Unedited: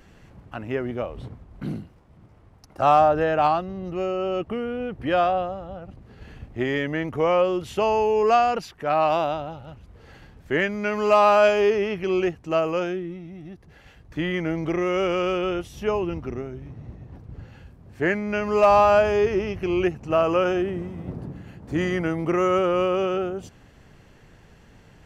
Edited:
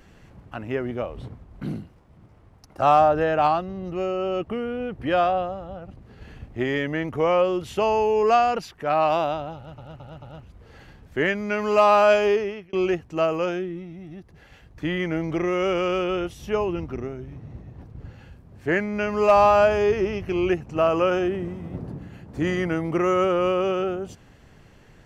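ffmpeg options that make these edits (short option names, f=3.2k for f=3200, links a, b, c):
-filter_complex "[0:a]asplit=5[a][b][c][d][e];[a]atrim=end=9.782[f];[b]atrim=start=9.558:end=9.782[g];[c]atrim=start=9.558:end=9.782[h];[d]atrim=start=9.558:end=12.07,asetpts=PTS-STARTPTS,afade=t=out:st=2.052:d=0.46[i];[e]atrim=start=12.07,asetpts=PTS-STARTPTS,afade=t=in:d=0.004:c=hsin[j];[f][g]acrossfade=d=0.004:c1=hsin:c2=hsin[k];[k][h]acrossfade=d=0.004:c1=hsin:c2=hsin[l];[i][j]concat=n=2:v=0:a=1[m];[l][m]acrossfade=d=0.004:c1=hsin:c2=hsin"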